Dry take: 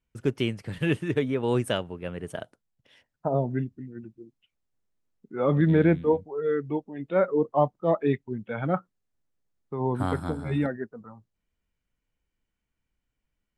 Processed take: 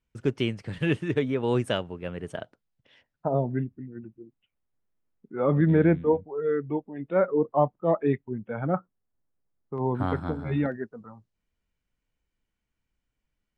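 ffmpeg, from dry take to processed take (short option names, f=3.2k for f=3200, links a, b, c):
-af "asetnsamples=n=441:p=0,asendcmd='2.36 lowpass f 4600;3.51 lowpass f 2300;8.39 lowpass f 1500;9.78 lowpass f 3300;10.72 lowpass f 7700',lowpass=7.4k"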